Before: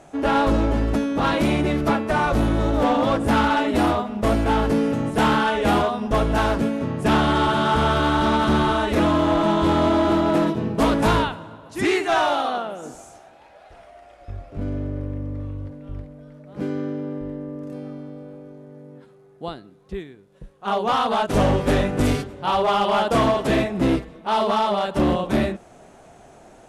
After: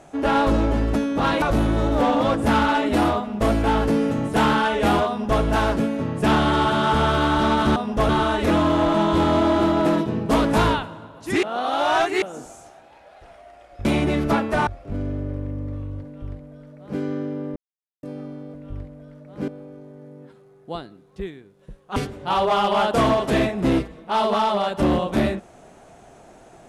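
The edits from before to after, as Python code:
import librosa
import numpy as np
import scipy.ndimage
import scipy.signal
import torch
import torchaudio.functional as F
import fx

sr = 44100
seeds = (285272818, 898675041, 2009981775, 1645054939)

y = fx.edit(x, sr, fx.move(start_s=1.42, length_s=0.82, to_s=14.34),
    fx.duplicate(start_s=5.9, length_s=0.33, to_s=8.58),
    fx.reverse_span(start_s=11.92, length_s=0.79),
    fx.duplicate(start_s=15.73, length_s=0.94, to_s=18.21),
    fx.silence(start_s=17.23, length_s=0.47),
    fx.cut(start_s=20.69, length_s=1.44), tone=tone)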